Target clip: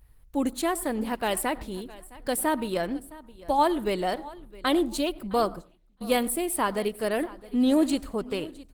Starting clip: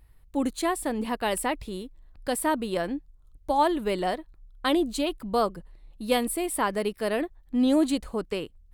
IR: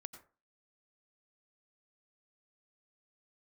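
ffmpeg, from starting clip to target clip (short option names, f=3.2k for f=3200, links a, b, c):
-filter_complex "[0:a]highshelf=f=10k:g=7.5,aecho=1:1:662|1324:0.106|0.0307,asettb=1/sr,asplit=3[a][b][c];[a]atrim=end=5.434[d];[b]atrim=start=5.43:end=6.72,asetpts=PTS-STARTPTS,afade=t=in:d=0.004:c=qsin,afade=t=out:st=1.286:d=0.004:c=qsin,agate=range=-16dB:threshold=-37dB:ratio=16:detection=peak[e];[c]atrim=start=6.716[f];[d][e]acrossfade=d=0.004:c1=hsin:c2=qsin[g];[g][f]acrossfade=d=0.004:c1=qsin:c2=hsin,asplit=2[h][i];[1:a]atrim=start_sample=2205[j];[i][j]afir=irnorm=-1:irlink=0,volume=-3.5dB[k];[h][k]amix=inputs=2:normalize=0,volume=-2.5dB" -ar 48000 -c:a libopus -b:a 16k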